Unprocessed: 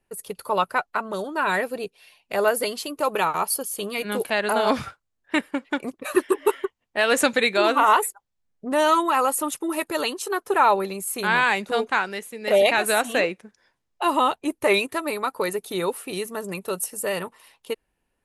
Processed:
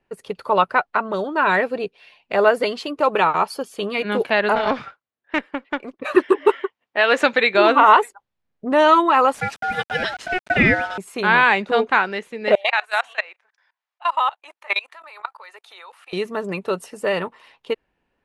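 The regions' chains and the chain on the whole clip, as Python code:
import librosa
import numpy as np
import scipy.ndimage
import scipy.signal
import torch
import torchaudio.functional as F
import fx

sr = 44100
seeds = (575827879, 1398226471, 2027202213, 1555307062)

y = fx.chain(x, sr, fx.highpass(hz=300.0, slope=6),
    fx.high_shelf(hz=10000.0, db=-9.0),
    fx.tube_stage(drive_db=15.0, bias=0.8), at=(4.55, 6.0))
y = fx.chain(y, sr, fx.highpass(hz=450.0, slope=6),
    fx.resample_linear(factor=2), at=(6.52, 7.55))
y = fx.chain(y, sr, fx.quant_dither(seeds[0], bits=6, dither='none'),
    fx.ring_mod(carrier_hz=1100.0), at=(9.34, 10.98))
y = fx.chain(y, sr, fx.highpass(hz=780.0, slope=24),
    fx.level_steps(step_db=23), at=(12.55, 16.13))
y = scipy.signal.sosfilt(scipy.signal.butter(2, 3400.0, 'lowpass', fs=sr, output='sos'), y)
y = fx.low_shelf(y, sr, hz=65.0, db=-8.5)
y = y * 10.0 ** (5.5 / 20.0)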